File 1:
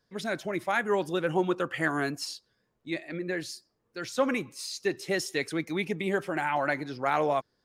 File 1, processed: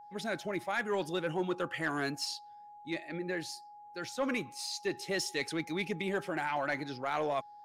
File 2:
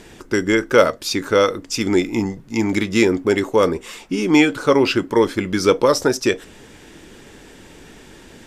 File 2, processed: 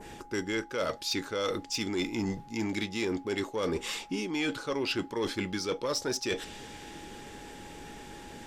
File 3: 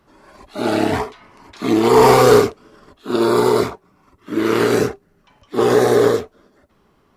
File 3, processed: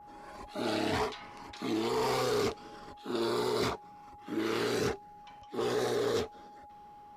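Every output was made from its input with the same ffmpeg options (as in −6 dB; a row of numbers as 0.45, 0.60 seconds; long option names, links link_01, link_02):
-af "adynamicequalizer=threshold=0.0126:dfrequency=4100:dqfactor=0.8:tfrequency=4100:tqfactor=0.8:attack=5:release=100:ratio=0.375:range=4:mode=boostabove:tftype=bell,areverse,acompressor=threshold=-23dB:ratio=12,areverse,aeval=exprs='val(0)+0.00501*sin(2*PI*830*n/s)':channel_layout=same,asoftclip=type=tanh:threshold=-18.5dB,volume=-3.5dB"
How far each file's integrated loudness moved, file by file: −5.0, −14.5, −17.0 LU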